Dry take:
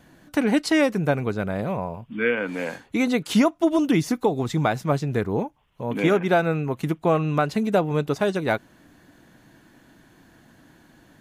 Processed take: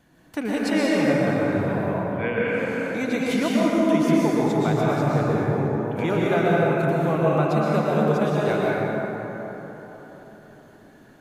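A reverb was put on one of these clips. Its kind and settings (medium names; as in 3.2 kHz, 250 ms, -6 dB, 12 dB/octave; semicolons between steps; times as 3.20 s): plate-style reverb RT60 4.2 s, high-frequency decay 0.4×, pre-delay 105 ms, DRR -6.5 dB; trim -6.5 dB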